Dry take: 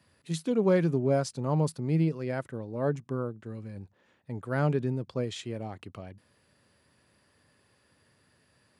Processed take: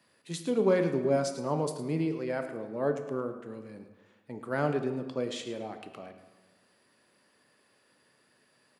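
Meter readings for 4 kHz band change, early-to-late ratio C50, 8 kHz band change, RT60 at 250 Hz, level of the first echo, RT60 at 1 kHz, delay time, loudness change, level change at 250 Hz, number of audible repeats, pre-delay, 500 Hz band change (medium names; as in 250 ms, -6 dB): +0.5 dB, 8.5 dB, +0.5 dB, 1.3 s, -14.0 dB, 1.3 s, 108 ms, -1.0 dB, -2.5 dB, 1, 13 ms, +0.5 dB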